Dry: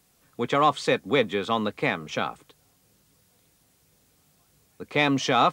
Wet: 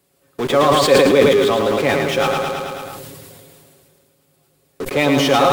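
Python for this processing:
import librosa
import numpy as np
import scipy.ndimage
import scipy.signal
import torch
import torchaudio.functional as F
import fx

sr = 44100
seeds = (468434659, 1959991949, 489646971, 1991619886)

p1 = scipy.signal.sosfilt(scipy.signal.butter(2, 44.0, 'highpass', fs=sr, output='sos'), x)
p2 = fx.peak_eq(p1, sr, hz=6000.0, db=-5.5, octaves=0.42)
p3 = p2 + 0.44 * np.pad(p2, (int(7.2 * sr / 1000.0), 0))[:len(p2)]
p4 = fx.small_body(p3, sr, hz=(380.0, 540.0), ring_ms=60, db=12)
p5 = fx.fuzz(p4, sr, gain_db=44.0, gate_db=-42.0)
p6 = p4 + F.gain(torch.from_numpy(p5), -12.0).numpy()
p7 = fx.echo_feedback(p6, sr, ms=109, feedback_pct=51, wet_db=-5.0)
p8 = fx.sustainer(p7, sr, db_per_s=23.0)
y = F.gain(torch.from_numpy(p8), -1.0).numpy()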